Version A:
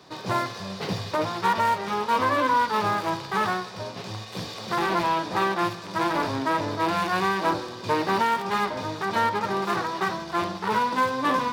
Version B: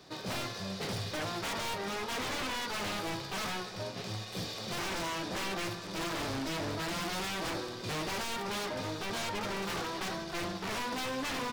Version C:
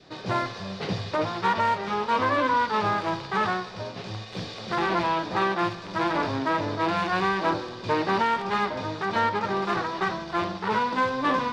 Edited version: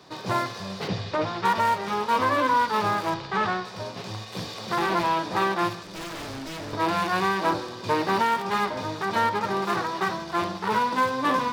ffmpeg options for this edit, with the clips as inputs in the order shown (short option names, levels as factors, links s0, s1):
-filter_complex "[2:a]asplit=2[s0][s1];[0:a]asplit=4[s2][s3][s4][s5];[s2]atrim=end=0.882[s6];[s0]atrim=start=0.878:end=1.452[s7];[s3]atrim=start=1.448:end=3.142[s8];[s1]atrim=start=3.138:end=3.652[s9];[s4]atrim=start=3.648:end=5.832[s10];[1:a]atrim=start=5.828:end=6.732[s11];[s5]atrim=start=6.728[s12];[s6][s7]acrossfade=d=0.004:c1=hsin:c2=hsin[s13];[s13][s8]acrossfade=d=0.004:c1=hsin:c2=hsin[s14];[s14][s9]acrossfade=d=0.004:c1=hsin:c2=hsin[s15];[s15][s10]acrossfade=d=0.004:c1=hsin:c2=hsin[s16];[s16][s11]acrossfade=d=0.004:c1=hsin:c2=hsin[s17];[s17][s12]acrossfade=d=0.004:c1=hsin:c2=hsin"